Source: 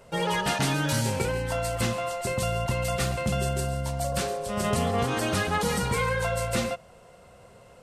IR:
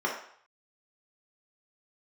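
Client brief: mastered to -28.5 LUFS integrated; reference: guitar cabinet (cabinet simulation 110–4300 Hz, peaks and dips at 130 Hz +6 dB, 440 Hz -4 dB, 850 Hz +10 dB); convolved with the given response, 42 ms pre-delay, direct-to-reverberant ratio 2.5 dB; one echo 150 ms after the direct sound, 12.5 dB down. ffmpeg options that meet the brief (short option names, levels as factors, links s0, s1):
-filter_complex "[0:a]aecho=1:1:150:0.237,asplit=2[s0][s1];[1:a]atrim=start_sample=2205,adelay=42[s2];[s1][s2]afir=irnorm=-1:irlink=0,volume=0.224[s3];[s0][s3]amix=inputs=2:normalize=0,highpass=110,equalizer=f=130:t=q:w=4:g=6,equalizer=f=440:t=q:w=4:g=-4,equalizer=f=850:t=q:w=4:g=10,lowpass=f=4300:w=0.5412,lowpass=f=4300:w=1.3066,volume=0.631"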